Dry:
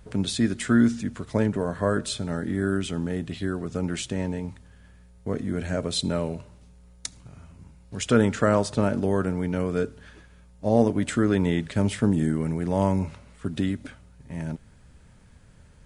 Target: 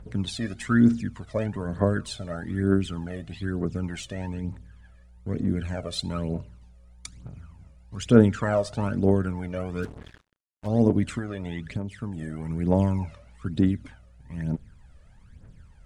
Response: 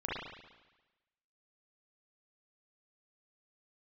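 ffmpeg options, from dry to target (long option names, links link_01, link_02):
-filter_complex "[0:a]aphaser=in_gain=1:out_gain=1:delay=1.8:decay=0.69:speed=1.1:type=triangular,highshelf=frequency=4400:gain=-7,asplit=3[link_01][link_02][link_03];[link_01]afade=type=out:start_time=9.82:duration=0.02[link_04];[link_02]acrusher=bits=5:mix=0:aa=0.5,afade=type=in:start_time=9.82:duration=0.02,afade=type=out:start_time=10.66:duration=0.02[link_05];[link_03]afade=type=in:start_time=10.66:duration=0.02[link_06];[link_04][link_05][link_06]amix=inputs=3:normalize=0,asettb=1/sr,asplit=3[link_07][link_08][link_09];[link_07]atrim=end=11.184[link_10];[link_08]atrim=start=11.18:end=12.5,asetpts=PTS-STARTPTS,afade=type=in:duration=0.004:curve=qsin,afade=type=out:start_time=1.316:duration=0.004:curve=qsin,acompressor=threshold=-23dB:ratio=12[link_11];[link_09]atrim=start=12.496[link_12];[link_10][link_11]acrossfade=duration=0.004:curve1=hsin:curve2=qsin[link_13];[link_13][link_12]acrossfade=duration=0.004:curve1=qsin:curve2=hsin,volume=-4.5dB"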